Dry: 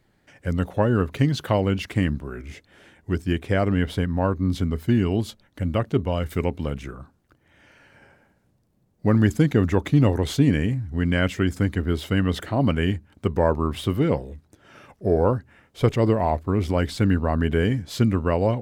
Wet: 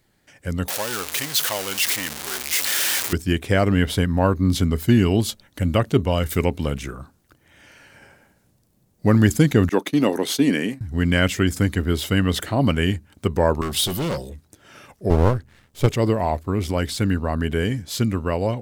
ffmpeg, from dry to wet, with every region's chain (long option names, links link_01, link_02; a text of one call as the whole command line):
ffmpeg -i in.wav -filter_complex "[0:a]asettb=1/sr,asplit=3[link_01][link_02][link_03];[link_01]atrim=end=0.684[link_04];[link_02]atrim=start=0.68:end=3.13,asetpts=PTS-STARTPTS,afade=type=in:duration=0.004:curve=qsin,afade=type=out:start_time=2.446:duration=0.004:curve=qsin,aeval=exprs='val(0)+0.5*0.0944*sgn(val(0))':channel_layout=same,highpass=frequency=1400:poles=1[link_05];[link_03]atrim=start=3.126[link_06];[link_04][link_05]acrossfade=duration=0.004:curve1=hsin:curve2=qsin[link_07];[link_07][link_06]acrossfade=duration=0.004:curve1=qsin:curve2=hsin,asettb=1/sr,asplit=3[link_08][link_09][link_10];[link_08]atrim=end=9.694[link_11];[link_09]atrim=start=9.69:end=10.81,asetpts=PTS-STARTPTS,afade=type=in:duration=0.004:curve=qsin,afade=type=out:start_time=1.116:duration=0.004:curve=qsin,highpass=frequency=210:width=0.5412,highpass=frequency=210:width=1.3066,agate=range=-33dB:threshold=-30dB:ratio=3:release=100:detection=peak,bandreject=frequency=7300:width=8.1[link_12];[link_10]atrim=start=10.806[link_13];[link_11][link_12]acrossfade=duration=0.004:curve1=hsin:curve2=qsin[link_14];[link_14][link_13]acrossfade=duration=0.004:curve1=qsin:curve2=hsin,asettb=1/sr,asplit=3[link_15][link_16][link_17];[link_15]atrim=end=13.614[link_18];[link_16]atrim=start=13.61:end=14.3,asetpts=PTS-STARTPTS,afade=type=in:duration=0.004:curve=qsin,afade=type=out:start_time=0.686:duration=0.004:curve=qsin,highshelf=frequency=2900:width_type=q:width=1.5:gain=7.5,aecho=1:1:5.4:0.33,atrim=end_sample=30429,asoftclip=type=hard:threshold=-23dB[link_19];[link_17]atrim=start=14.296[link_20];[link_18][link_19]acrossfade=duration=0.004:curve1=hsin:curve2=qsin[link_21];[link_21][link_20]acrossfade=duration=0.004:curve1=qsin:curve2=hsin,asettb=1/sr,asplit=3[link_22][link_23][link_24];[link_22]atrim=end=15.104[link_25];[link_23]atrim=start=15.1:end=15.87,asetpts=PTS-STARTPTS,afade=type=in:duration=0.004:curve=qsin,afade=type=out:start_time=0.766:duration=0.004:curve=qsin,aeval=exprs='max(val(0),0)':channel_layout=same,equalizer=frequency=73:width_type=o:width=2.9:gain=10[link_26];[link_24]atrim=start=15.866[link_27];[link_25][link_26]acrossfade=duration=0.004:curve1=hsin:curve2=qsin[link_28];[link_28][link_27]acrossfade=duration=0.004:curve1=qsin:curve2=hsin,highshelf=frequency=3900:gain=11.5,dynaudnorm=framelen=300:gausssize=21:maxgain=11.5dB,volume=-1.5dB" out.wav